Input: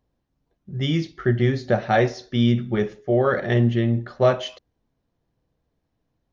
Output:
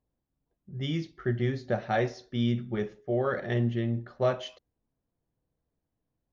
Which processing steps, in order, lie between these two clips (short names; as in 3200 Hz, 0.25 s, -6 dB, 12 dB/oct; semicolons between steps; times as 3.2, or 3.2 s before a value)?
mismatched tape noise reduction decoder only; gain -8.5 dB